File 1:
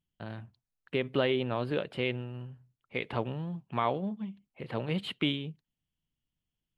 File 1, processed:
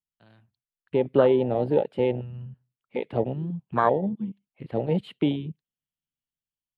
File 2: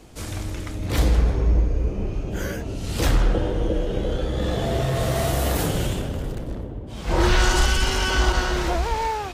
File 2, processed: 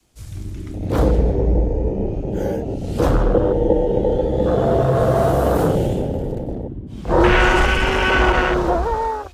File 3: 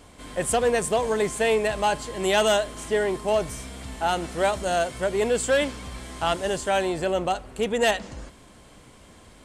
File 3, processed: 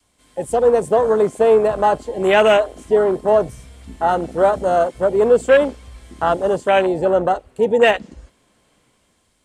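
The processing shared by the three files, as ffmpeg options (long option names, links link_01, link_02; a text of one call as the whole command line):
ffmpeg -i in.wav -filter_complex "[0:a]adynamicequalizer=threshold=0.0112:dfrequency=490:dqfactor=2.7:tfrequency=490:tqfactor=2.7:attack=5:release=100:ratio=0.375:range=2.5:mode=boostabove:tftype=bell,acrossover=split=110|3300[link_01][link_02][link_03];[link_02]dynaudnorm=framelen=140:gausssize=9:maxgain=7dB[link_04];[link_01][link_04][link_03]amix=inputs=3:normalize=0,afwtdn=0.1,highshelf=frequency=2900:gain=9.5" out.wav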